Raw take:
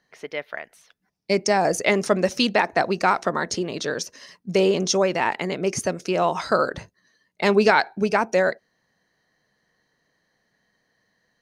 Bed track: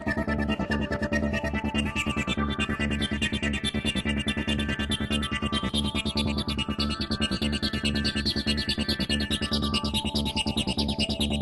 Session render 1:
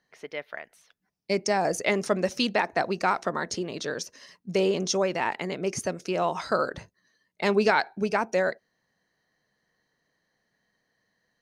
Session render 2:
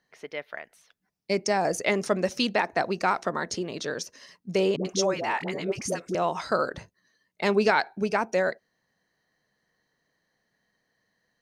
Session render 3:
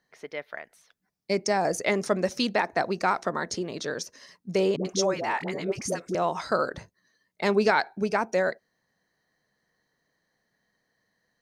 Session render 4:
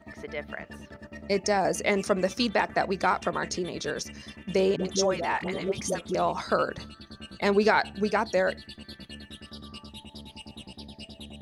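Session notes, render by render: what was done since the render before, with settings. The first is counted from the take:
trim -5 dB
4.76–6.15 s: phase dispersion highs, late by 89 ms, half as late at 550 Hz
peaking EQ 2.8 kHz -4 dB 0.39 oct
add bed track -17 dB

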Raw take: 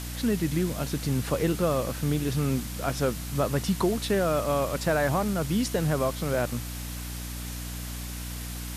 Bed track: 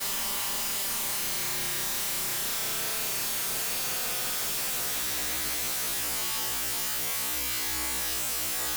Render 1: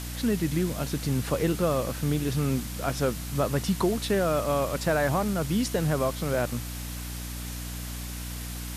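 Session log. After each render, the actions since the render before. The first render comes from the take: no audible change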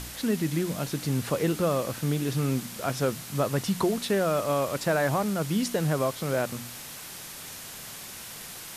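de-hum 60 Hz, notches 5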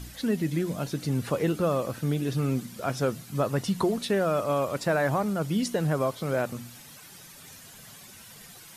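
noise reduction 11 dB, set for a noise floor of -42 dBFS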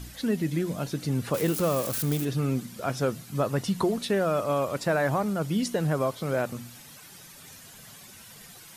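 1.34–2.25 s: zero-crossing glitches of -23.5 dBFS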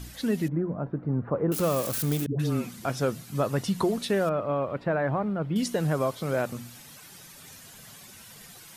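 0.48–1.52 s: low-pass 1.3 kHz 24 dB/octave; 2.26–2.85 s: phase dispersion highs, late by 134 ms, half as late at 490 Hz; 4.29–5.56 s: distance through air 480 m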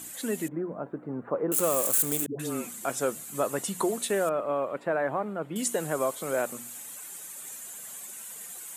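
high-pass 310 Hz 12 dB/octave; resonant high shelf 6.3 kHz +6.5 dB, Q 3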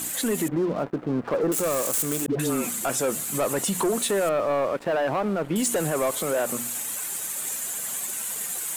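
waveshaping leveller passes 3; peak limiter -18.5 dBFS, peak gain reduction 6.5 dB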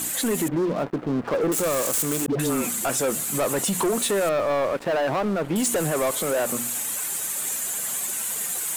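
waveshaping leveller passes 1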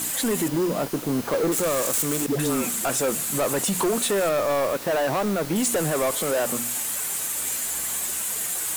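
add bed track -8 dB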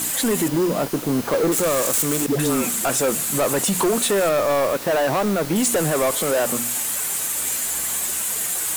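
trim +3.5 dB

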